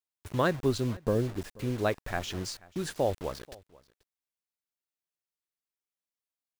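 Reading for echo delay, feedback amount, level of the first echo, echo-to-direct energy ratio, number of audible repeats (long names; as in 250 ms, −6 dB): 485 ms, repeats not evenly spaced, −23.0 dB, −23.0 dB, 1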